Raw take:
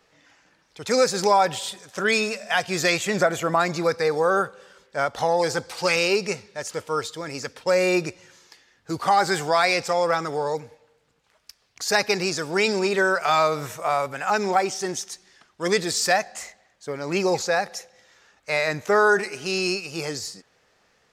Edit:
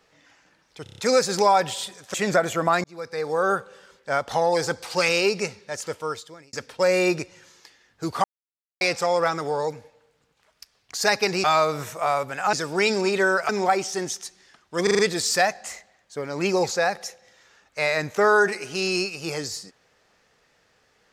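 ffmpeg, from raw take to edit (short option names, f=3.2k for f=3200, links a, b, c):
-filter_complex "[0:a]asplit=18[a][b][c][d][e][f][g][h][i][j][k][l][m][n][o][p][q][r];[a]atrim=end=0.862[s];[b]atrim=start=0.828:end=0.862[t];[c]atrim=start=0.828:end=0.862[u];[d]atrim=start=0.828:end=0.862[v];[e]atrim=start=0.828:end=0.862[w];[f]atrim=start=0.828:end=1.992[x];[g]atrim=start=3.008:end=3.71,asetpts=PTS-STARTPTS,afade=t=out:st=0.698:d=0.004:c=hsin[y];[h]atrim=start=3.71:end=7.4,asetpts=PTS-STARTPTS,afade=t=in:d=0.72,afade=t=out:st=3.02:d=0.67[z];[i]atrim=start=7.4:end=9.11,asetpts=PTS-STARTPTS,afade=t=in:d=0.004:c=hsin,afade=t=out:st=1.706:d=0.004:c=hsin[aa];[j]atrim=start=9.11:end=9.68,asetpts=PTS-STARTPTS,volume=0[ab];[k]atrim=start=9.68:end=12.312,asetpts=PTS-STARTPTS,afade=t=in:d=0.004:c=hsin[ac];[l]atrim=start=13.268:end=14.362[ad];[m]atrim=start=12.308:end=13.272[ae];[n]atrim=start=14.358:end=15.742[af];[o]atrim=start=15.698:end=15.742[ag];[p]atrim=start=15.698:end=15.742[ah];[q]atrim=start=15.698:end=15.742[ai];[r]atrim=start=15.698[aj];[s][t]acrossfade=d=0.004:c1=hsin:c2=hsin[ak];[ak][u]acrossfade=d=0.004:c1=hsin:c2=hsin[al];[al][v]acrossfade=d=0.004:c1=hsin:c2=hsin[am];[am][w]acrossfade=d=0.004:c1=hsin:c2=hsin[an];[an][x]acrossfade=d=0.004:c1=hsin:c2=hsin[ao];[y][z][aa][ab][ac]concat=n=5:v=0:a=1[ap];[ao][ap]acrossfade=d=0.004:c1=hsin:c2=hsin[aq];[aq][ad]acrossfade=d=0.004:c1=hsin:c2=hsin[ar];[ar][ae]acrossfade=d=0.004:c1=hsin:c2=hsin[as];[as][af]acrossfade=d=0.004:c1=hsin:c2=hsin[at];[at][ag]acrossfade=d=0.004:c1=hsin:c2=hsin[au];[au][ah]acrossfade=d=0.004:c1=hsin:c2=hsin[av];[av][ai]acrossfade=d=0.004:c1=hsin:c2=hsin[aw];[aw][aj]acrossfade=d=0.004:c1=hsin:c2=hsin"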